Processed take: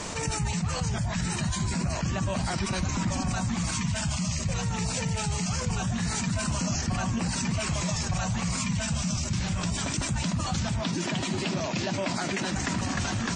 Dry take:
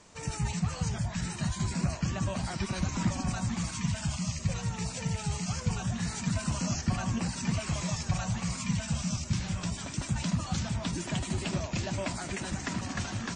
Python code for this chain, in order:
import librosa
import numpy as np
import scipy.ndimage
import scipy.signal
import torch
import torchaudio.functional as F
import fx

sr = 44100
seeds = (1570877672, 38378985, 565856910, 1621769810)

y = fx.cheby1_bandpass(x, sr, low_hz=180.0, high_hz=5400.0, order=2, at=(10.81, 12.56))
y = fx.env_flatten(y, sr, amount_pct=70)
y = F.gain(torch.from_numpy(y), -2.0).numpy()